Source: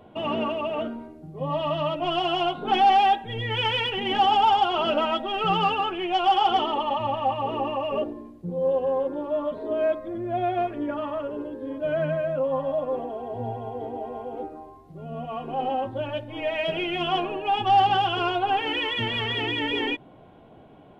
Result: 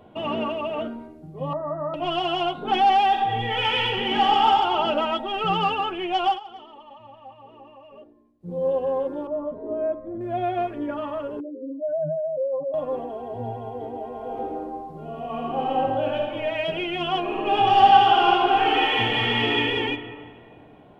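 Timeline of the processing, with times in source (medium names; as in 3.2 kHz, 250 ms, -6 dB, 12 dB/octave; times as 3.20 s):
1.53–1.94 s: rippled Chebyshev low-pass 1.9 kHz, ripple 6 dB
3.07–4.49 s: reverb throw, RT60 1.6 s, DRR 0.5 dB
6.27–8.53 s: dip -19.5 dB, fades 0.13 s
9.27–10.21 s: Bessel low-pass 740 Hz
11.40–12.74 s: spectral contrast enhancement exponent 2.8
14.16–16.29 s: reverb throw, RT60 1.5 s, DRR -2 dB
17.21–19.58 s: reverb throw, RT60 2.2 s, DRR -3.5 dB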